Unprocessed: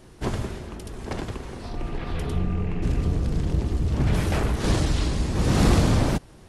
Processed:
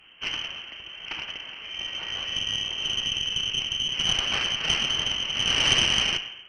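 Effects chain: tilt shelf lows -4 dB, about 670 Hz; wavefolder -14.5 dBFS; frequency inversion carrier 3.1 kHz; gated-style reverb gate 330 ms falling, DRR 6 dB; Chebyshev shaper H 2 -8 dB, 3 -19 dB, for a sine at -8 dBFS

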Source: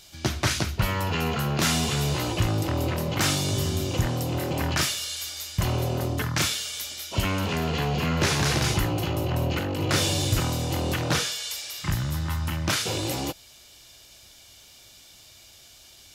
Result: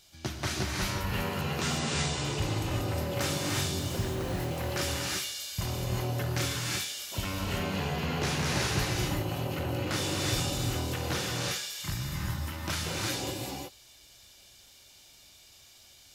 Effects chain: 1.41–2.25 s: steep low-pass 9.5 kHz 96 dB/octave; 3.79–4.40 s: sample-rate reducer 3.5 kHz; gated-style reverb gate 390 ms rising, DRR -2 dB; trim -9 dB

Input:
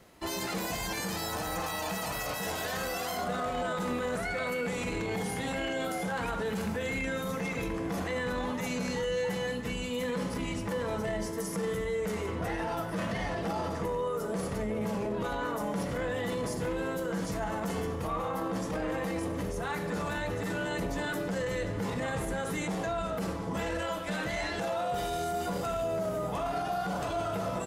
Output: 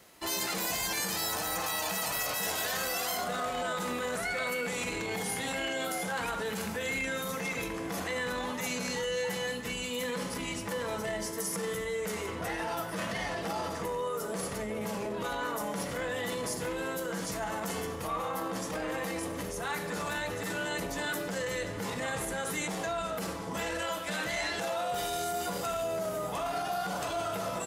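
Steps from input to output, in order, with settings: tilt EQ +2 dB/octave

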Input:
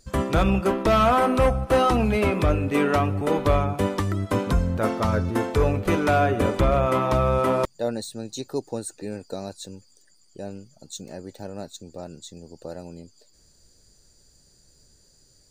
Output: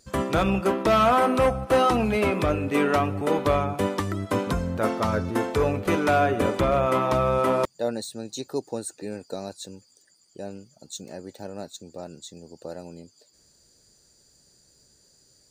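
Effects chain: high-pass 150 Hz 6 dB/octave

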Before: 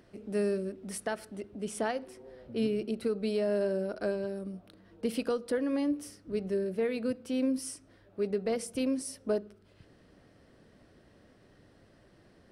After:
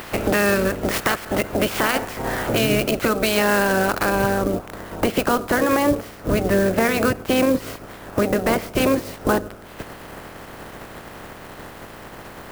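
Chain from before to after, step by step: spectral peaks clipped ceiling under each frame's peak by 23 dB; low-pass 2.8 kHz 6 dB/octave, from 4.10 s 1 kHz; compression 2.5:1, threshold -47 dBFS, peak gain reduction 14 dB; dynamic bell 1.4 kHz, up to +3 dB, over -58 dBFS, Q 0.89; loudness maximiser +34 dB; sampling jitter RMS 0.035 ms; trim -7.5 dB

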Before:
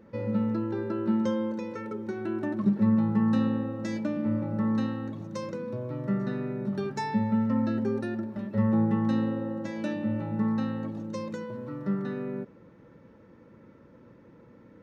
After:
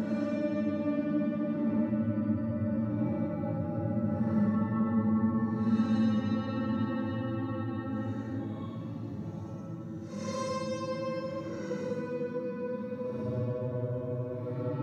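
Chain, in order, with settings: peak limiter -22.5 dBFS, peak gain reduction 8.5 dB; Paulstretch 7.8×, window 0.10 s, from 4.03 s

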